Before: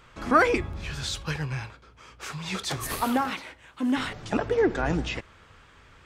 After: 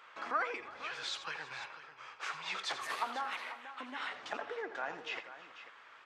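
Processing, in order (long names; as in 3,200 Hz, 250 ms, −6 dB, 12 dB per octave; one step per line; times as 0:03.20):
head-to-tape spacing loss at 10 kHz 21 dB
downward compressor 3 to 1, threshold −35 dBFS, peak gain reduction 14 dB
high-pass filter 860 Hz 12 dB per octave
on a send: multi-tap delay 84/329/491 ms −12/−19.5/−13 dB
on the sum: level +3.5 dB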